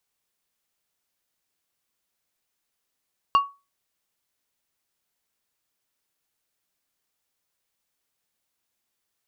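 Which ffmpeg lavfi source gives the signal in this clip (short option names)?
-f lavfi -i "aevalsrc='0.282*pow(10,-3*t/0.27)*sin(2*PI*1120*t)+0.0708*pow(10,-3*t/0.142)*sin(2*PI*2800*t)+0.0178*pow(10,-3*t/0.102)*sin(2*PI*4480*t)+0.00447*pow(10,-3*t/0.088)*sin(2*PI*5600*t)+0.00112*pow(10,-3*t/0.073)*sin(2*PI*7280*t)':d=0.89:s=44100"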